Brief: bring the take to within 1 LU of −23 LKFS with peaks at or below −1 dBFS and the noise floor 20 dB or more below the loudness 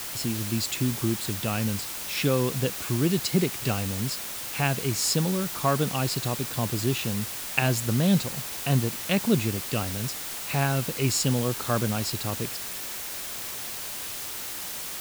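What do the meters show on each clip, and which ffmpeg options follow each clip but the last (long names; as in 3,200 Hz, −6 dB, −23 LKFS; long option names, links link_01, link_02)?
background noise floor −35 dBFS; target noise floor −47 dBFS; integrated loudness −27.0 LKFS; sample peak −6.5 dBFS; target loudness −23.0 LKFS
→ -af "afftdn=noise_reduction=12:noise_floor=-35"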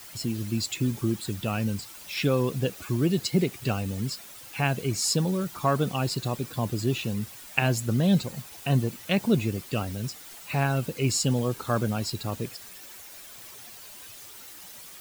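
background noise floor −45 dBFS; target noise floor −48 dBFS
→ -af "afftdn=noise_reduction=6:noise_floor=-45"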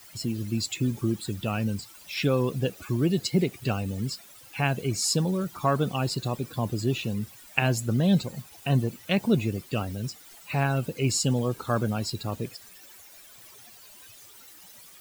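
background noise floor −50 dBFS; integrated loudness −28.0 LKFS; sample peak −6.5 dBFS; target loudness −23.0 LKFS
→ -af "volume=5dB"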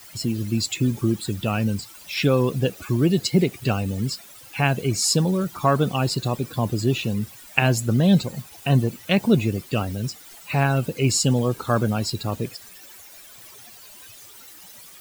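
integrated loudness −23.0 LKFS; sample peak −1.5 dBFS; background noise floor −45 dBFS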